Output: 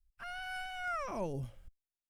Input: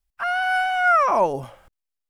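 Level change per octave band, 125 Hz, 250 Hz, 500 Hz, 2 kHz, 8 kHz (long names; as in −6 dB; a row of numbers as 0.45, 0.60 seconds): −3.5 dB, −9.0 dB, −18.0 dB, −19.0 dB, can't be measured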